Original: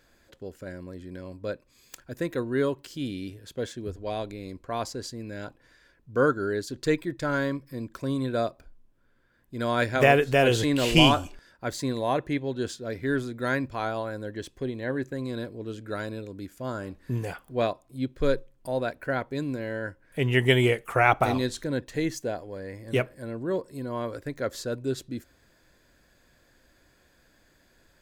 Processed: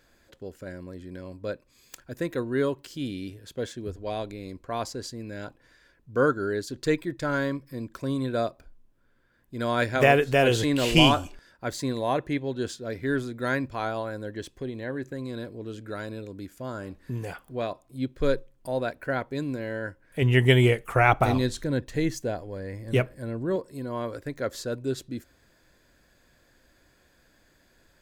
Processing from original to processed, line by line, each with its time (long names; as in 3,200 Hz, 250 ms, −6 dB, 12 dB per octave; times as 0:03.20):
0:14.58–0:17.71: downward compressor 1.5 to 1, threshold −33 dBFS
0:20.22–0:23.56: low-shelf EQ 130 Hz +9.5 dB